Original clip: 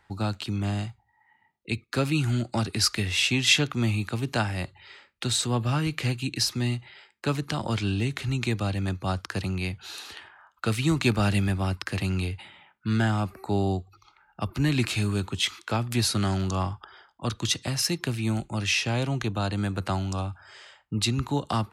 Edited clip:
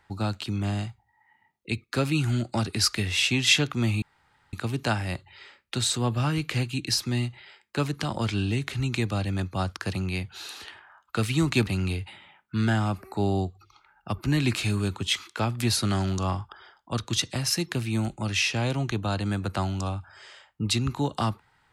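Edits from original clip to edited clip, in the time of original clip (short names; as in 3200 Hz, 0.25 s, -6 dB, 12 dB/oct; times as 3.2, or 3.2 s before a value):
4.02 insert room tone 0.51 s
11.16–11.99 cut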